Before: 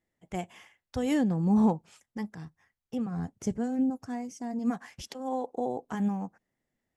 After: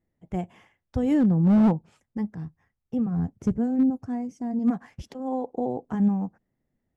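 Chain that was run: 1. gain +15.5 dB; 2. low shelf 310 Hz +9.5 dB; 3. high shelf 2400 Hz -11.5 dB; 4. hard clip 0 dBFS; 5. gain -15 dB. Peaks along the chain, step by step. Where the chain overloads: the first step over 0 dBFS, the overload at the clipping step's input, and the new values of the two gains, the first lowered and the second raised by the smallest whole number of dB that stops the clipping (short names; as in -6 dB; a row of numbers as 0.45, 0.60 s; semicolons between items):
+0.5, +5.0, +5.0, 0.0, -15.0 dBFS; step 1, 5.0 dB; step 1 +10.5 dB, step 5 -10 dB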